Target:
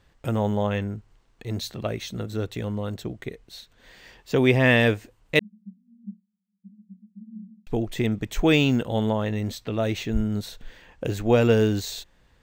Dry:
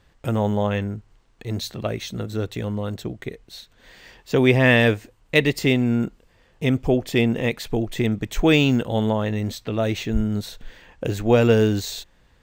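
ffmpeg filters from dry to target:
-filter_complex "[0:a]asettb=1/sr,asplit=3[a][b][c];[a]atrim=end=5.394[d];[b]atrim=start=5.39:end=7.67,asetpts=PTS-STARTPTS,afade=t=in:d=0.004:c=qsin,afade=t=out:st=2.276:d=0.004:c=qsin,asuperpass=centerf=200:order=12:qfactor=5.6[e];[c]atrim=start=7.666[f];[d][e]acrossfade=d=0.004:c1=hsin:c2=qsin[g];[g][f]acrossfade=d=0.004:c1=qsin:c2=hsin,volume=-2.5dB"

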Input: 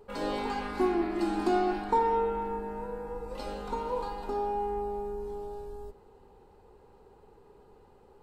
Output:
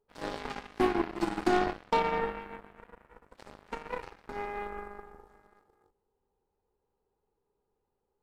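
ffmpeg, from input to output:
-filter_complex "[0:a]asplit=3[a][b][c];[a]afade=t=out:st=1.64:d=0.02[d];[b]tremolo=f=280:d=0.4,afade=t=in:st=1.64:d=0.02,afade=t=out:st=2.21:d=0.02[e];[c]afade=t=in:st=2.21:d=0.02[f];[d][e][f]amix=inputs=3:normalize=0,aeval=exprs='0.168*(cos(1*acos(clip(val(0)/0.168,-1,1)))-cos(1*PI/2))+0.015*(cos(3*acos(clip(val(0)/0.168,-1,1)))-cos(3*PI/2))+0.0188*(cos(7*acos(clip(val(0)/0.168,-1,1)))-cos(7*PI/2))':c=same,volume=2dB"

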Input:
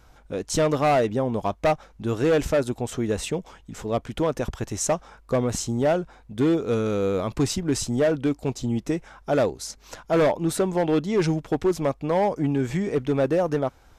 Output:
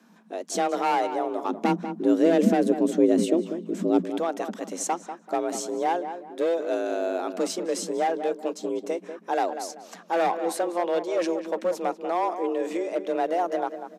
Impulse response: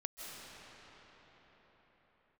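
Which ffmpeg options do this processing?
-filter_complex "[0:a]asplit=3[a][b][c];[a]afade=t=out:st=1.48:d=0.02[d];[b]asubboost=boost=8.5:cutoff=250,afade=t=in:st=1.48:d=0.02,afade=t=out:st=4.01:d=0.02[e];[c]afade=t=in:st=4.01:d=0.02[f];[d][e][f]amix=inputs=3:normalize=0,afreqshift=170,asplit=2[g][h];[h]adelay=193,lowpass=f=1.9k:p=1,volume=-9dB,asplit=2[i][j];[j]adelay=193,lowpass=f=1.9k:p=1,volume=0.32,asplit=2[k][l];[l]adelay=193,lowpass=f=1.9k:p=1,volume=0.32,asplit=2[m][n];[n]adelay=193,lowpass=f=1.9k:p=1,volume=0.32[o];[g][i][k][m][o]amix=inputs=5:normalize=0,volume=-4dB"

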